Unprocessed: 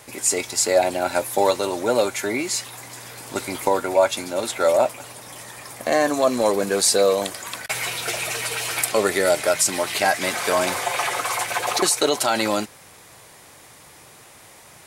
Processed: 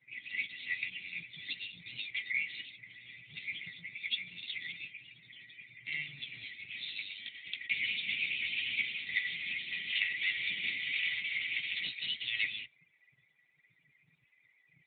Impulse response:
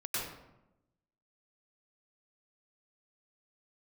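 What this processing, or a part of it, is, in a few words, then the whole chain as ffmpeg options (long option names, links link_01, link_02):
mobile call with aggressive noise cancelling: -af "afftfilt=real='re*(1-between(b*sr/4096,180,1900))':imag='im*(1-between(b*sr/4096,180,1900))':win_size=4096:overlap=0.75,highpass=170,afftdn=noise_reduction=35:noise_floor=-45,volume=-2dB" -ar 8000 -c:a libopencore_amrnb -b:a 10200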